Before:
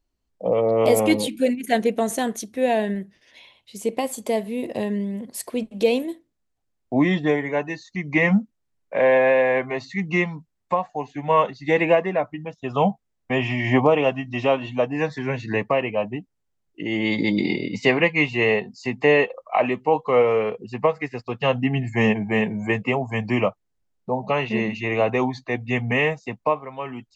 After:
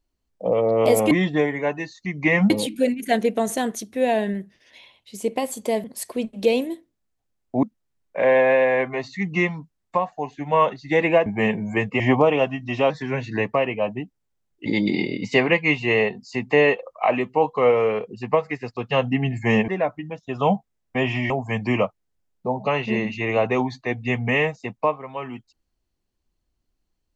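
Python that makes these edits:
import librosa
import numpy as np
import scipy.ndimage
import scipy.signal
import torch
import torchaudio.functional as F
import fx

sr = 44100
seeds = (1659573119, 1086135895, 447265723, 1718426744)

y = fx.edit(x, sr, fx.cut(start_s=4.45, length_s=0.77),
    fx.move(start_s=7.01, length_s=1.39, to_s=1.11),
    fx.swap(start_s=12.03, length_s=1.62, other_s=22.19, other_length_s=0.74),
    fx.cut(start_s=14.55, length_s=0.51),
    fx.cut(start_s=16.82, length_s=0.35), tone=tone)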